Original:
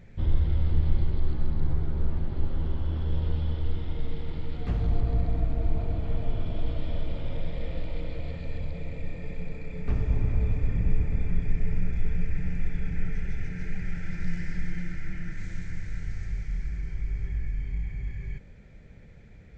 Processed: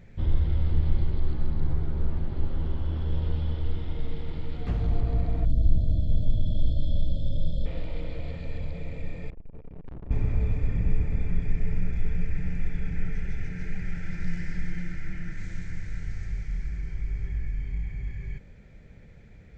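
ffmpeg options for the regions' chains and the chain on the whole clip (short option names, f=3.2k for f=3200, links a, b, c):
-filter_complex "[0:a]asettb=1/sr,asplit=3[a][b][c];[a]atrim=end=5.454[d];[b]atrim=start=5.45:end=7.66,asetpts=PTS-STARTPTS,afade=t=in:d=0.004:c=qsin,afade=t=out:st=2.206:d=0.004:c=qsin,asuperstop=centerf=1400:order=20:qfactor=0.55,aecho=1:1:1.2:0.82,atrim=end_sample=97461[e];[c]atrim=start=7.656[f];[d][e]acrossfade=d=0.004:c1=hsin:c2=qsin[g];[g][f]acrossfade=d=0.004:c1=qsin:c2=hsin,asettb=1/sr,asplit=3[h][i][j];[h]atrim=end=9.304[k];[i]atrim=start=9.3:end=10.11,asetpts=PTS-STARTPTS,afade=t=in:d=0.004:c=qsin,afade=t=out:st=0.806:d=0.004:c=qsin,adynamicsmooth=sensitivity=3:basefreq=600,aeval=exprs='(tanh(79.4*val(0)+0.7)-tanh(0.7))/79.4':c=same[l];[j]atrim=start=10.106[m];[k][l]acrossfade=d=0.004:c1=hsin:c2=qsin[n];[n][m]acrossfade=d=0.004:c1=qsin:c2=hsin"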